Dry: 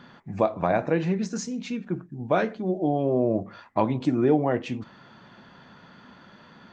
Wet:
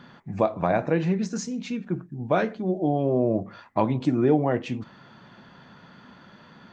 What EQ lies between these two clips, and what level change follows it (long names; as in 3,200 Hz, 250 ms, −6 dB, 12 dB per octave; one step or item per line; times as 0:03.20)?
parametric band 140 Hz +2.5 dB 1 octave
0.0 dB